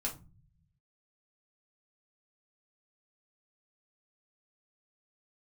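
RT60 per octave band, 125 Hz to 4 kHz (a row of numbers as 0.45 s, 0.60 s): 1.3 s, 1.2 s, 0.30 s, 0.30 s, 0.25 s, 0.20 s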